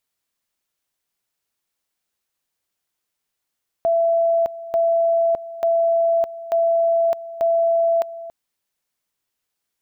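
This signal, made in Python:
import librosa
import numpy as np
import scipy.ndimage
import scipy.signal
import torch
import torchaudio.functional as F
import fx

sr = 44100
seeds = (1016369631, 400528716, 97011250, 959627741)

y = fx.two_level_tone(sr, hz=669.0, level_db=-14.5, drop_db=16.0, high_s=0.61, low_s=0.28, rounds=5)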